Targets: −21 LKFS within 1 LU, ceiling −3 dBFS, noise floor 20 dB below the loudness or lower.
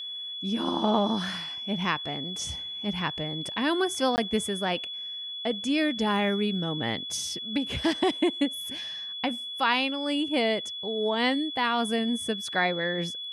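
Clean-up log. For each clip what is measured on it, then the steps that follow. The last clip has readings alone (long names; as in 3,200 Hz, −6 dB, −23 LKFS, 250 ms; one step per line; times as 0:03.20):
number of dropouts 1; longest dropout 19 ms; interfering tone 3,400 Hz; level of the tone −34 dBFS; integrated loudness −28.0 LKFS; sample peak −11.0 dBFS; target loudness −21.0 LKFS
→ repair the gap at 0:04.16, 19 ms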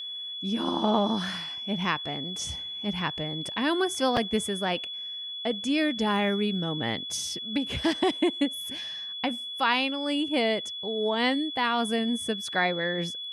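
number of dropouts 0; interfering tone 3,400 Hz; level of the tone −34 dBFS
→ notch filter 3,400 Hz, Q 30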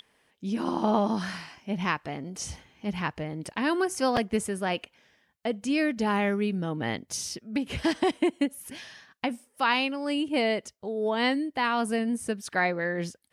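interfering tone none found; integrated loudness −28.5 LKFS; sample peak −11.0 dBFS; target loudness −21.0 LKFS
→ level +7.5 dB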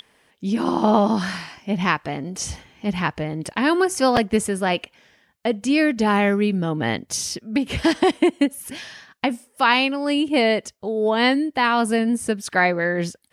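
integrated loudness −21.0 LKFS; sample peak −3.5 dBFS; background noise floor −62 dBFS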